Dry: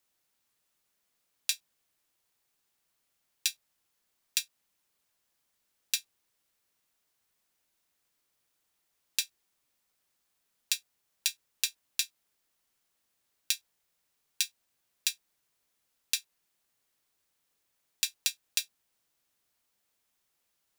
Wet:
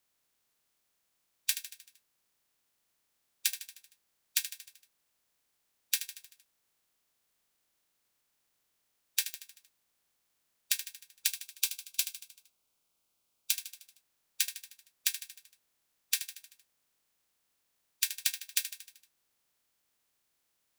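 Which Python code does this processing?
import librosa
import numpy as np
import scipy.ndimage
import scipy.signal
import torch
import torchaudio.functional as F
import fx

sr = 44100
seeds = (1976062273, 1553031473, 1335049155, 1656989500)

y = fx.spec_clip(x, sr, under_db=16)
y = fx.peak_eq(y, sr, hz=1800.0, db=-14.5, octaves=0.27, at=(11.27, 13.54))
y = fx.echo_feedback(y, sr, ms=77, feedback_pct=56, wet_db=-11)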